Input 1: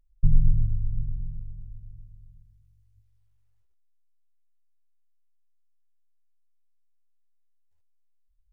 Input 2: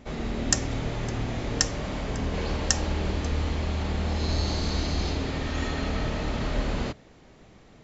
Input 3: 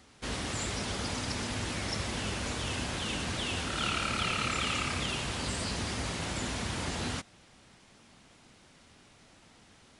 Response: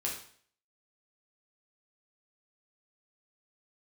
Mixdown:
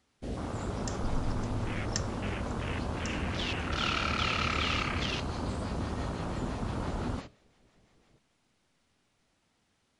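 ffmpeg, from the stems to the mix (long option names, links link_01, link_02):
-filter_complex "[0:a]adelay=800,volume=-16.5dB[link_01];[1:a]acrossover=split=620[link_02][link_03];[link_02]aeval=exprs='val(0)*(1-0.7/2+0.7/2*cos(2*PI*5.9*n/s))':channel_layout=same[link_04];[link_03]aeval=exprs='val(0)*(1-0.7/2-0.7/2*cos(2*PI*5.9*n/s))':channel_layout=same[link_05];[link_04][link_05]amix=inputs=2:normalize=0,adelay=350,volume=-11.5dB,asplit=2[link_06][link_07];[link_07]volume=-17dB[link_08];[2:a]afwtdn=0.0158,volume=1.5dB[link_09];[3:a]atrim=start_sample=2205[link_10];[link_08][link_10]afir=irnorm=-1:irlink=0[link_11];[link_01][link_06][link_09][link_11]amix=inputs=4:normalize=0"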